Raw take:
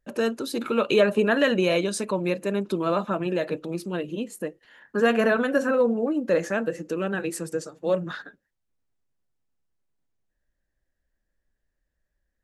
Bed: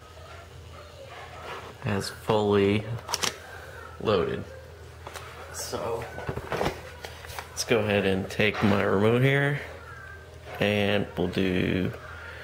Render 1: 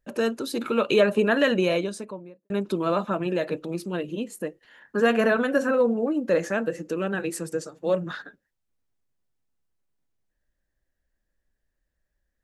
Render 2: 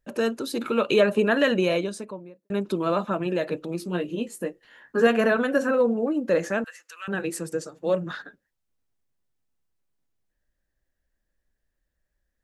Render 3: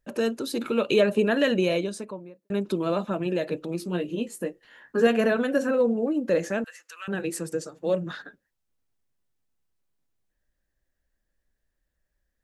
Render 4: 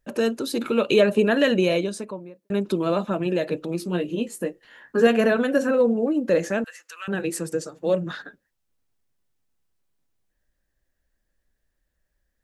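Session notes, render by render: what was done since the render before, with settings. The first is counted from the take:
1.53–2.50 s: studio fade out
3.80–5.07 s: doubling 17 ms -6 dB; 6.64–7.08 s: high-pass 1.2 kHz 24 dB/octave
dynamic bell 1.2 kHz, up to -6 dB, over -38 dBFS, Q 1.1
trim +3 dB

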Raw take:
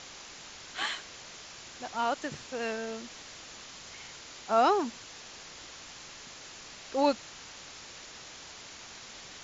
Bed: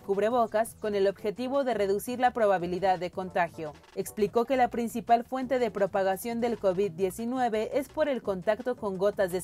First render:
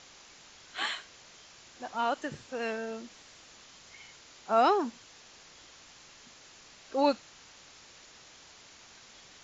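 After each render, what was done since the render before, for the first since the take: noise print and reduce 7 dB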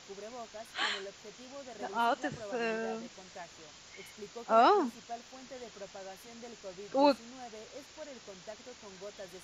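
add bed -20 dB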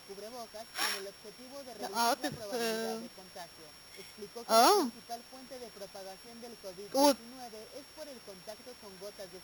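sorted samples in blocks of 8 samples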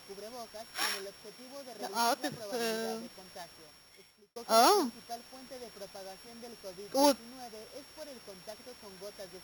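1.25–2.52 s: high-pass 120 Hz; 3.42–4.36 s: fade out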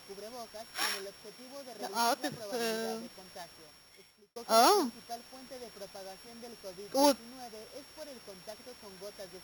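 no audible change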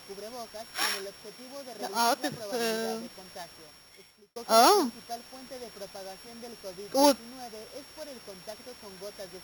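trim +4 dB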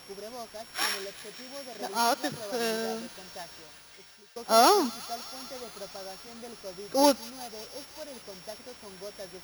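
feedback echo behind a high-pass 183 ms, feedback 83%, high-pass 1.9 kHz, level -14 dB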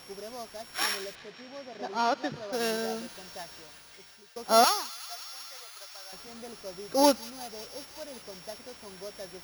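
1.15–2.53 s: distance through air 140 m; 4.64–6.13 s: high-pass 1.2 kHz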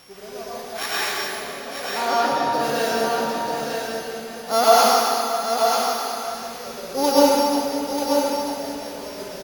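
delay 937 ms -5.5 dB; plate-style reverb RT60 2.7 s, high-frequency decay 0.75×, pre-delay 95 ms, DRR -8.5 dB

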